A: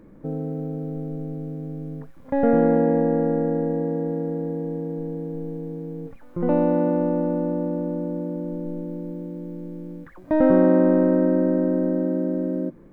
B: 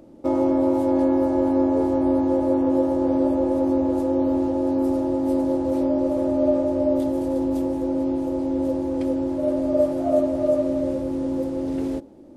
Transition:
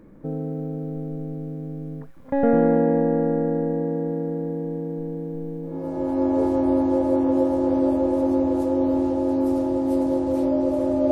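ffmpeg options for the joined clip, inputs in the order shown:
-filter_complex "[0:a]apad=whole_dur=11.11,atrim=end=11.11,atrim=end=6.39,asetpts=PTS-STARTPTS[a];[1:a]atrim=start=0.99:end=6.49,asetpts=PTS-STARTPTS[b];[a][b]acrossfade=d=0.78:c1=tri:c2=tri"

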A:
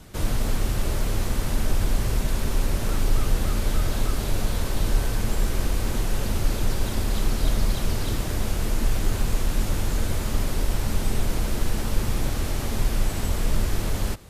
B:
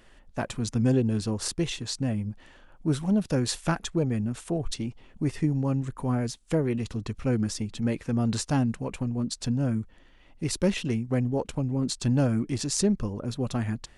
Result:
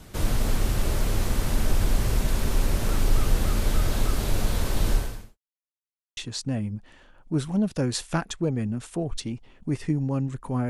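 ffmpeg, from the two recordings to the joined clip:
-filter_complex "[0:a]apad=whole_dur=10.69,atrim=end=10.69,asplit=2[a][b];[a]atrim=end=5.38,asetpts=PTS-STARTPTS,afade=t=out:st=4.92:d=0.46:c=qua[c];[b]atrim=start=5.38:end=6.17,asetpts=PTS-STARTPTS,volume=0[d];[1:a]atrim=start=1.71:end=6.23,asetpts=PTS-STARTPTS,afade=t=in:d=0.004:c=hsin[e];[c][d][e]concat=n=3:v=0:a=1"

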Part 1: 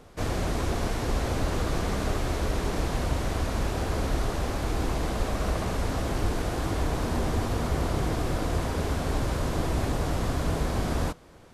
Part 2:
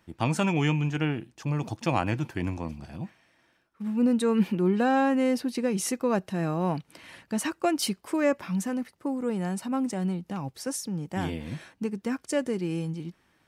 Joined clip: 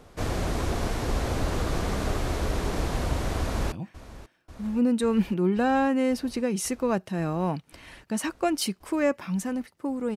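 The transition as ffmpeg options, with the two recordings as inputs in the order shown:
-filter_complex "[0:a]apad=whole_dur=10.16,atrim=end=10.16,atrim=end=3.722[a];[1:a]atrim=start=2.928:end=9.37[b];[a][b]acrossfade=d=0.004:c1=hsin:c2=hsin,asplit=2[c][d];[d]afade=t=in:st=3.4:d=0.01,afade=t=out:st=3.72:d=0.01,aecho=0:1:540|1080|1620|2160|2700|3240|3780|4320|4860|5400|5940|6480:0.149624|0.12718|0.108103|0.0918876|0.0781044|0.0663888|0.0564305|0.0479659|0.040771|0.0346554|0.0294571|0.0250385[e];[c][e]amix=inputs=2:normalize=0"

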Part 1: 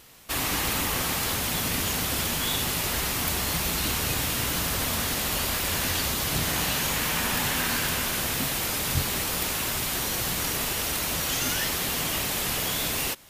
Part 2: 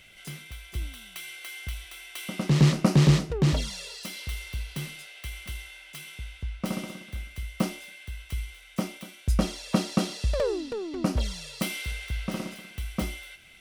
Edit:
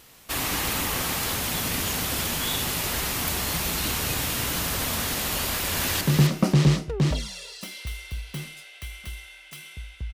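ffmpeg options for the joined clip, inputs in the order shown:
-filter_complex "[0:a]apad=whole_dur=10.13,atrim=end=10.13,atrim=end=6.012[a];[1:a]atrim=start=2.428:end=6.55[b];[a][b]acrossfade=d=0.004:c1=hsin:c2=hsin,asplit=2[c][d];[d]afade=t=in:st=5.5:d=0.01,afade=t=out:st=6.01:d=0.01,aecho=0:1:260|520|780:0.562341|0.112468|0.0224937[e];[c][e]amix=inputs=2:normalize=0"

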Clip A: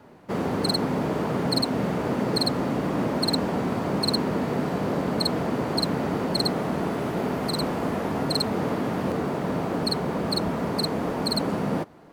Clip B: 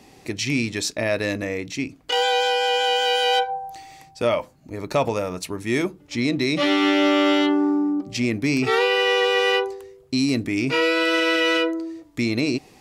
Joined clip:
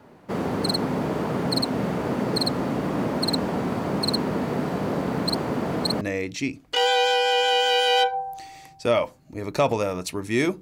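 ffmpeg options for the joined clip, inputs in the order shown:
-filter_complex "[0:a]apad=whole_dur=10.61,atrim=end=10.61,asplit=2[a][b];[a]atrim=end=5.112[c];[b]atrim=start=5.108:end=6.012,asetpts=PTS-STARTPTS,areverse[d];[1:a]atrim=start=1.368:end=5.97[e];[c][d]acrossfade=d=0.004:c1=hsin:c2=hsin[f];[f][e]acrossfade=d=0.004:c1=hsin:c2=hsin"

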